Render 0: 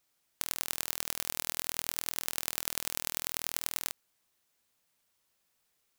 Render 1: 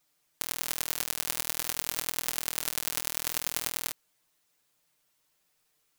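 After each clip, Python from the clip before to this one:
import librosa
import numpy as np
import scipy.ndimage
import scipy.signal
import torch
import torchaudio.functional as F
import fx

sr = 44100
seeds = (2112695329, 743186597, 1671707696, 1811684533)

y = x + 0.78 * np.pad(x, (int(6.6 * sr / 1000.0), 0))[:len(x)]
y = F.gain(torch.from_numpy(y), 1.0).numpy()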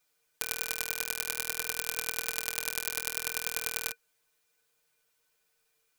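y = fx.peak_eq(x, sr, hz=220.0, db=-4.5, octaves=2.3)
y = fx.small_body(y, sr, hz=(460.0, 1500.0, 2400.0), ring_ms=95, db=13)
y = F.gain(torch.from_numpy(y), -2.0).numpy()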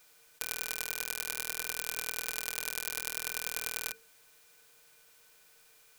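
y = fx.bin_compress(x, sr, power=0.6)
y = fx.hum_notches(y, sr, base_hz=50, count=9)
y = F.gain(torch.from_numpy(y), -4.0).numpy()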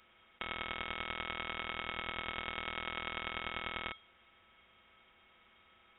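y = fx.freq_invert(x, sr, carrier_hz=3700)
y = F.gain(torch.from_numpy(y), 2.5).numpy()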